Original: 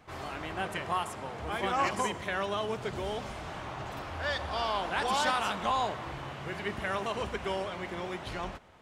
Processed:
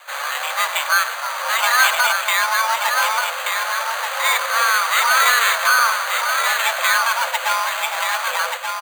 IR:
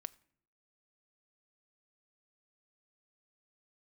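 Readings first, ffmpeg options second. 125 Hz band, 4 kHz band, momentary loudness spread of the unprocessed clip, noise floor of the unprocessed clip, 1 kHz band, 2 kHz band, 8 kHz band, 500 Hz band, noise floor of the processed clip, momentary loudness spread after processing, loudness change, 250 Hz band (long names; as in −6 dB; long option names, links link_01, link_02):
below −40 dB, +17.0 dB, 11 LU, −43 dBFS, +14.0 dB, +20.0 dB, +23.5 dB, +4.5 dB, −27 dBFS, 8 LU, +16.0 dB, below −40 dB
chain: -filter_complex "[0:a]aecho=1:1:1180:0.501,asplit=2[link_01][link_02];[link_02]highpass=frequency=720:poles=1,volume=9dB,asoftclip=type=tanh:threshold=-16dB[link_03];[link_01][link_03]amix=inputs=2:normalize=0,lowpass=frequency=5100:poles=1,volume=-6dB,acrusher=samples=9:mix=1:aa=0.000001,asplit=2[link_04][link_05];[1:a]atrim=start_sample=2205[link_06];[link_05][link_06]afir=irnorm=-1:irlink=0,volume=9dB[link_07];[link_04][link_07]amix=inputs=2:normalize=0,afreqshift=460,volume=3dB"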